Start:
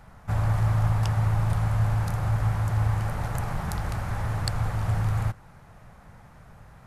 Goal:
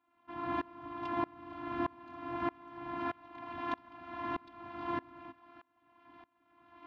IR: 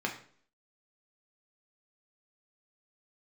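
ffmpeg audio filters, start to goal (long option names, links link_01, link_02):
-af "aeval=exprs='abs(val(0))':channel_layout=same,afftfilt=real='hypot(re,im)*cos(PI*b)':imag='0':win_size=512:overlap=0.75,highpass=200,equalizer=frequency=270:width_type=q:width=4:gain=10,equalizer=frequency=390:width_type=q:width=4:gain=-8,equalizer=frequency=580:width_type=q:width=4:gain=-5,equalizer=frequency=990:width_type=q:width=4:gain=6,equalizer=frequency=1500:width_type=q:width=4:gain=-3,equalizer=frequency=2100:width_type=q:width=4:gain=-3,lowpass=frequency=3300:width=0.5412,lowpass=frequency=3300:width=1.3066,aeval=exprs='val(0)*pow(10,-27*if(lt(mod(-1.6*n/s,1),2*abs(-1.6)/1000),1-mod(-1.6*n/s,1)/(2*abs(-1.6)/1000),(mod(-1.6*n/s,1)-2*abs(-1.6)/1000)/(1-2*abs(-1.6)/1000))/20)':channel_layout=same,volume=6.5dB"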